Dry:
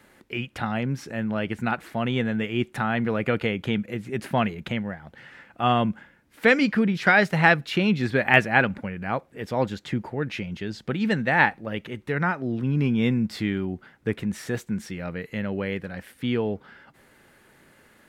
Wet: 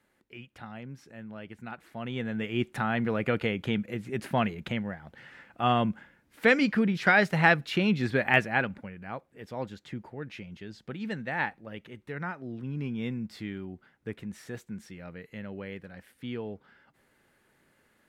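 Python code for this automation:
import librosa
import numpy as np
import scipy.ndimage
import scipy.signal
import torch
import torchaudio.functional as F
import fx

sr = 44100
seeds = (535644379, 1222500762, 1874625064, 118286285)

y = fx.gain(x, sr, db=fx.line((1.67, -15.5), (2.57, -3.5), (8.14, -3.5), (9.01, -11.0)))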